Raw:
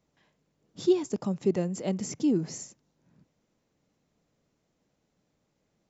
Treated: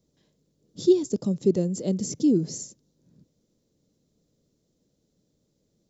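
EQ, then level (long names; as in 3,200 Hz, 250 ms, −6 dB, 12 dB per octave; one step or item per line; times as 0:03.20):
flat-topped bell 1,400 Hz −13.5 dB 2.3 octaves
+4.5 dB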